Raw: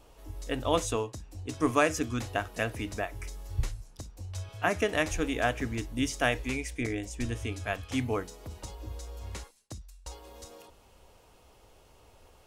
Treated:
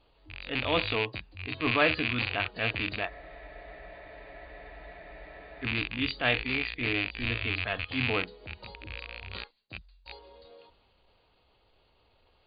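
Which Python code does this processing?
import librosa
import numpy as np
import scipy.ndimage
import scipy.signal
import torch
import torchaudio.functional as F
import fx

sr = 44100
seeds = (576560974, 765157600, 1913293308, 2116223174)

y = fx.rattle_buzz(x, sr, strikes_db=-39.0, level_db=-20.0)
y = fx.noise_reduce_blind(y, sr, reduce_db=9)
y = fx.transient(y, sr, attack_db=-7, sustain_db=2)
y = fx.brickwall_lowpass(y, sr, high_hz=4800.0)
y = fx.high_shelf(y, sr, hz=2900.0, db=10.5)
y = fx.spec_freeze(y, sr, seeds[0], at_s=3.12, hold_s=2.5)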